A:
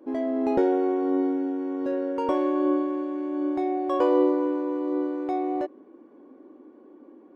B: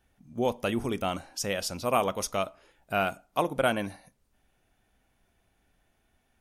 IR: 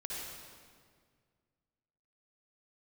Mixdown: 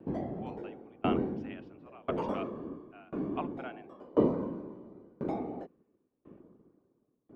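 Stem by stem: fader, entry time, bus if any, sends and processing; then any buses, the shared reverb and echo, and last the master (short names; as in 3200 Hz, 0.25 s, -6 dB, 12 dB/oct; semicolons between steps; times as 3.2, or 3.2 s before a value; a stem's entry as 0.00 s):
-5.0 dB, 0.00 s, no send, whisperiser
-1.5 dB, 0.00 s, no send, Chebyshev band-pass 670–2800 Hz, order 3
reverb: off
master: low shelf 170 Hz +10.5 dB; dB-ramp tremolo decaying 0.96 Hz, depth 30 dB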